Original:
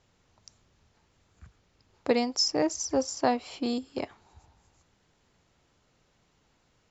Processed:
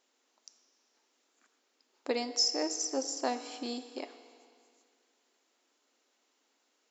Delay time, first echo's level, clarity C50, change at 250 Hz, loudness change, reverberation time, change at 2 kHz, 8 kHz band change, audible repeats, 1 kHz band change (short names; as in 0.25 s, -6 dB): none, none, 11.5 dB, -8.5 dB, -4.0 dB, 2.2 s, -5.5 dB, n/a, none, -7.0 dB